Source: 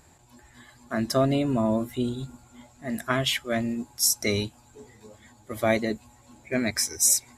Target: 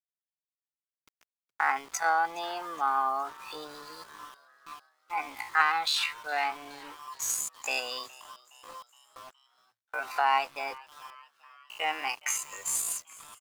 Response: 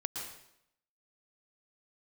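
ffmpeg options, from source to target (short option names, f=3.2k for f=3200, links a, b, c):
-filter_complex "[0:a]agate=range=-13dB:threshold=-46dB:ratio=16:detection=peak,acompressor=threshold=-33dB:ratio=3,highpass=f=880:t=q:w=4.6,asetrate=53981,aresample=44100,atempo=0.816958,adynamicsmooth=sensitivity=7.5:basefreq=5.6k,atempo=0.55,aeval=exprs='val(0)*gte(abs(val(0)),0.00251)':c=same,asplit=5[a][b][c][d][e];[b]adelay=417,afreqshift=110,volume=-22dB[f];[c]adelay=834,afreqshift=220,volume=-26.6dB[g];[d]adelay=1251,afreqshift=330,volume=-31.2dB[h];[e]adelay=1668,afreqshift=440,volume=-35.7dB[i];[a][f][g][h][i]amix=inputs=5:normalize=0,volume=5.5dB"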